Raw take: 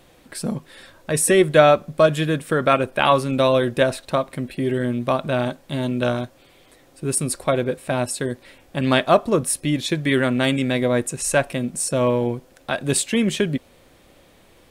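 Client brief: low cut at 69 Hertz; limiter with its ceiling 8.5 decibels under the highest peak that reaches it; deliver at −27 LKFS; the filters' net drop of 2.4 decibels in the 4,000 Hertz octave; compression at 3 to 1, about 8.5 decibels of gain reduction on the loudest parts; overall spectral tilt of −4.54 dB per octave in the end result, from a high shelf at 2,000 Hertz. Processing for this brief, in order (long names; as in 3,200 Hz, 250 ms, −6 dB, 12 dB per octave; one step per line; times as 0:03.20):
high-pass filter 69 Hz
high-shelf EQ 2,000 Hz +4 dB
parametric band 4,000 Hz −7 dB
downward compressor 3 to 1, threshold −20 dBFS
level −0.5 dB
brickwall limiter −15.5 dBFS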